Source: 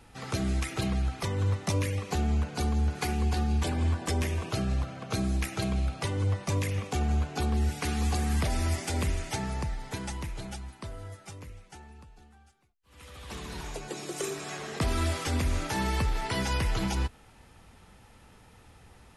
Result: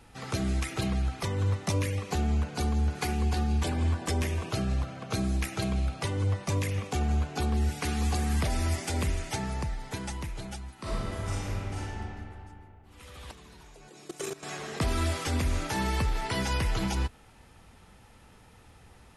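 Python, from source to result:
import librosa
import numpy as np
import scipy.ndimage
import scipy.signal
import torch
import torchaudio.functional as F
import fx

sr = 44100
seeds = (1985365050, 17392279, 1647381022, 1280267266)

y = fx.reverb_throw(x, sr, start_s=10.74, length_s=1.17, rt60_s=2.8, drr_db=-10.5)
y = fx.level_steps(y, sr, step_db=17, at=(13.31, 14.43))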